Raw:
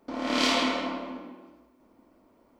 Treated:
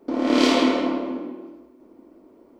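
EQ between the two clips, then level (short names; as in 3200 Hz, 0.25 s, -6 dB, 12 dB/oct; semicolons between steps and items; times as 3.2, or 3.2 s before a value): bell 360 Hz +14 dB 1.2 oct; +1.0 dB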